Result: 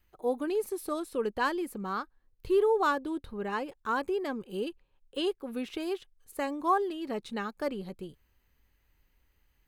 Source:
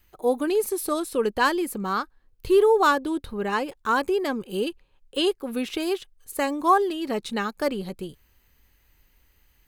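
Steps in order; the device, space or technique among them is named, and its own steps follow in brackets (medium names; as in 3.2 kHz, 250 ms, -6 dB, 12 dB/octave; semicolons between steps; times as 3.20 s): behind a face mask (treble shelf 3.5 kHz -6.5 dB); trim -7 dB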